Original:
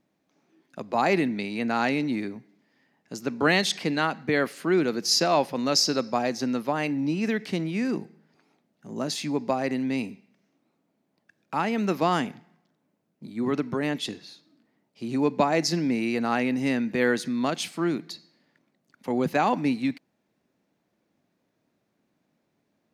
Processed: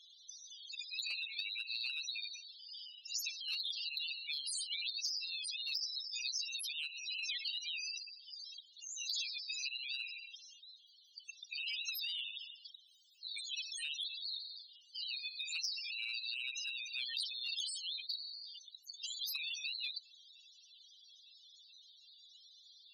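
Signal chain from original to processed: steep high-pass 2900 Hz 48 dB/oct; loudest bins only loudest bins 8; high shelf 8100 Hz -7 dB; compressor 6:1, threshold -47 dBFS, peak gain reduction 20.5 dB; spectral compressor 4:1; gain +10.5 dB

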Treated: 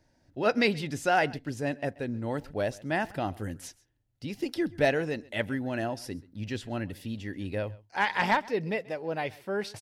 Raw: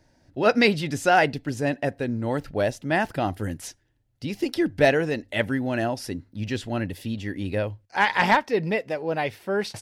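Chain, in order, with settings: echo 0.132 s -22.5 dB; gain -6 dB

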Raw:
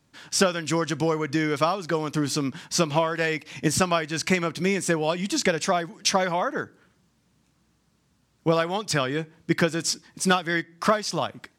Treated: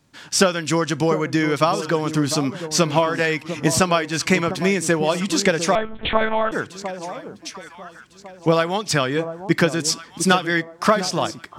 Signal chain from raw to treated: echo with dull and thin repeats by turns 0.701 s, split 1000 Hz, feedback 53%, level -10 dB; 5.75–6.52 monotone LPC vocoder at 8 kHz 220 Hz; gain +4.5 dB

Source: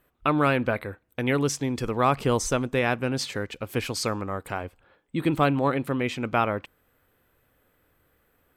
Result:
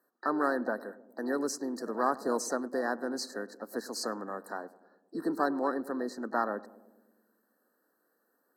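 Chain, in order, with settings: steep high-pass 200 Hz 48 dB/oct; on a send: darkening echo 0.104 s, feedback 70%, low-pass 850 Hz, level -17 dB; on the sum: added harmonics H 4 -43 dB, 7 -43 dB, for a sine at -6.5 dBFS; harmoniser +5 st -12 dB; brick-wall FIR band-stop 1900–3900 Hz; gain -6.5 dB

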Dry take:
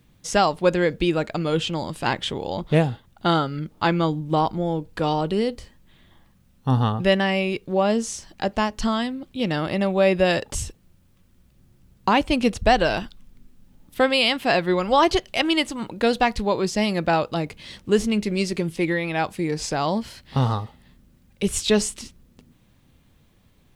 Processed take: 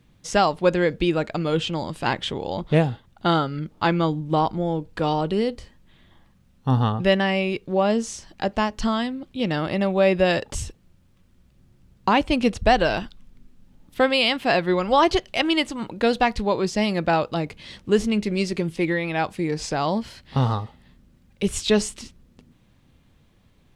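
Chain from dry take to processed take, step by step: high shelf 10000 Hz -10.5 dB

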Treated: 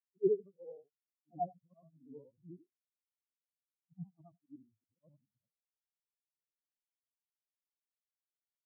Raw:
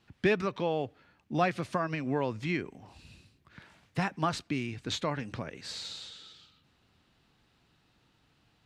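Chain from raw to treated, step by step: short-time reversal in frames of 0.211 s; LPF 1100 Hz 24 dB/oct; spectral expander 4:1

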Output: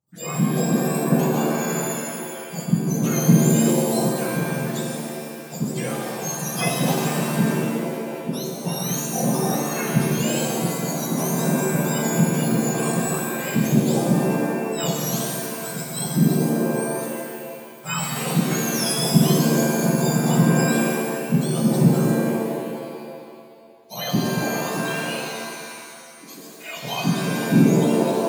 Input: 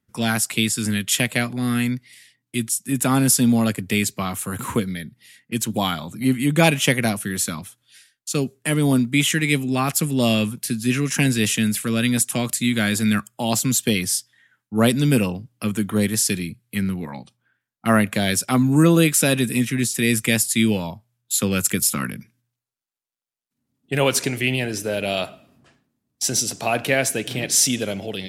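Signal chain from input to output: spectrum mirrored in octaves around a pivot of 1300 Hz; 25.17–26.77 HPF 980 Hz 12 dB/oct; shimmer reverb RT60 2.1 s, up +7 st, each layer -2 dB, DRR 0 dB; gain -8.5 dB

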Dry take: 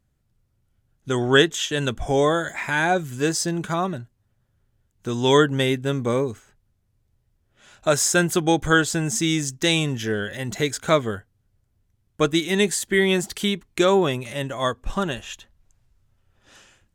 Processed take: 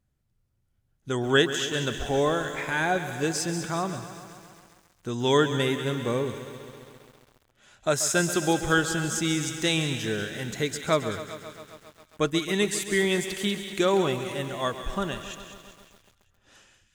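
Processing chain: thin delay 0.191 s, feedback 49%, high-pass 1700 Hz, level -9 dB; lo-fi delay 0.134 s, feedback 80%, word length 7-bit, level -13 dB; gain -5 dB

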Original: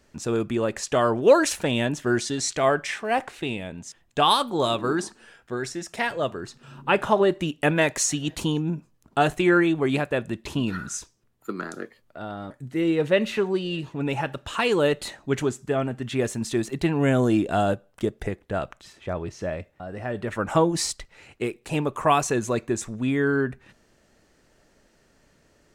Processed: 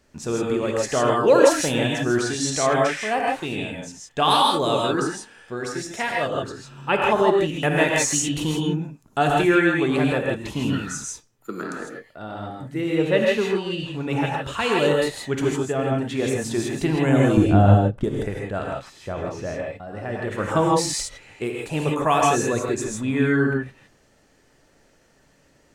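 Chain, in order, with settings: 17.37–18.04 RIAA curve playback; non-linear reverb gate 0.18 s rising, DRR -1.5 dB; gain -1 dB

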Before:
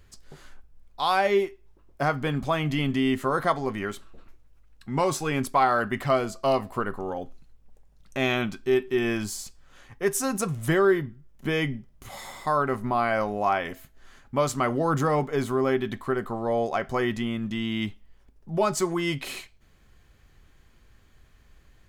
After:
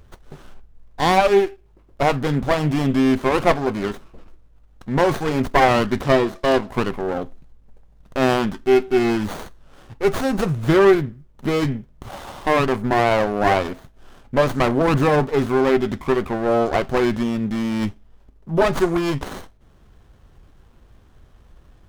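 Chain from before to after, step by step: 6.03–6.68 speaker cabinet 210–6700 Hz, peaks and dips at 350 Hz +5 dB, 730 Hz -5 dB, 3700 Hz +9 dB; running maximum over 17 samples; gain +8 dB

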